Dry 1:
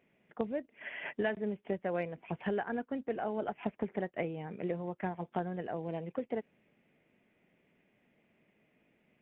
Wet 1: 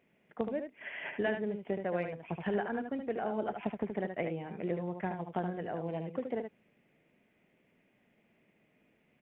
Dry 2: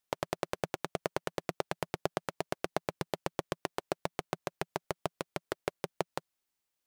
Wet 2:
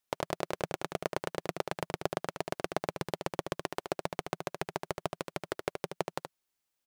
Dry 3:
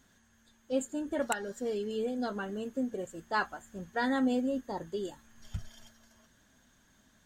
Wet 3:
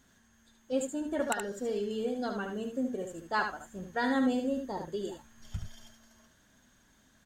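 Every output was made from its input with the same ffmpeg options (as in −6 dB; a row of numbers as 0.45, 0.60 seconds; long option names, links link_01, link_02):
-af "aecho=1:1:74:0.473"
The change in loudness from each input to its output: +1.0, +1.0, +0.5 LU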